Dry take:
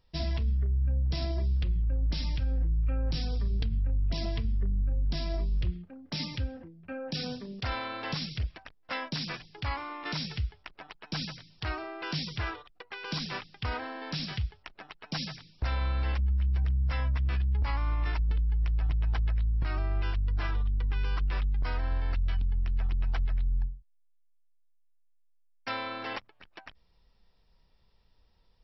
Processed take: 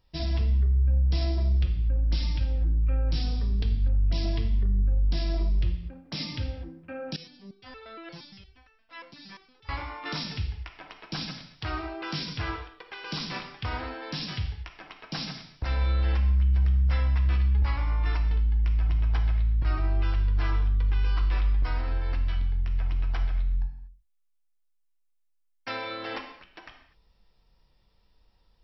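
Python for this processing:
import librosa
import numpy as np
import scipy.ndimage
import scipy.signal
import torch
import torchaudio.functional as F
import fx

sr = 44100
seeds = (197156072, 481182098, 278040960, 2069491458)

y = fx.rev_gated(x, sr, seeds[0], gate_ms=270, shape='falling', drr_db=3.0)
y = fx.resonator_held(y, sr, hz=8.6, low_hz=170.0, high_hz=440.0, at=(7.16, 9.69))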